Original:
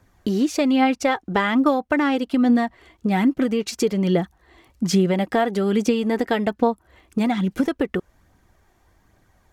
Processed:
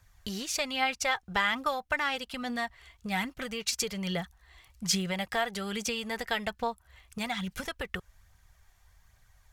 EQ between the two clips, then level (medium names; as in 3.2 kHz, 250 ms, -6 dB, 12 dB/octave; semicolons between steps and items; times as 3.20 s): amplifier tone stack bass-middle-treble 10-0-10; bass shelf 410 Hz +5.5 dB; +1.5 dB